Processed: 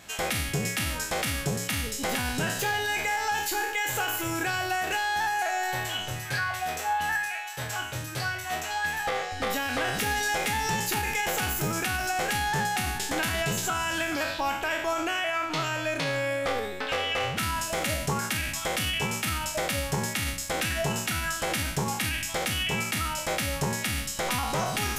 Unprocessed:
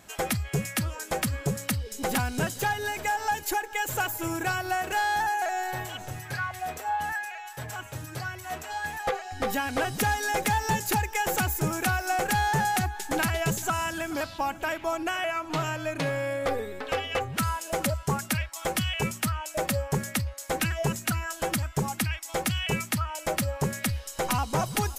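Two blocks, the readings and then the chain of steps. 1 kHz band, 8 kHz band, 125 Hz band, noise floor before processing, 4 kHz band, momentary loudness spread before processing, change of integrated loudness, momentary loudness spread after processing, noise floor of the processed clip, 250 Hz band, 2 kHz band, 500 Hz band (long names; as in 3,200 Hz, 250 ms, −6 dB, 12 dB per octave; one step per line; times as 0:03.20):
−1.0 dB, +2.0 dB, −3.0 dB, −44 dBFS, +4.5 dB, 7 LU, +1.0 dB, 3 LU, −36 dBFS, −2.0 dB, +2.5 dB, −0.5 dB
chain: peak hold with a decay on every bin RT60 0.58 s
parametric band 3,200 Hz +6.5 dB 2.2 octaves
brickwall limiter −19.5 dBFS, peak gain reduction 11 dB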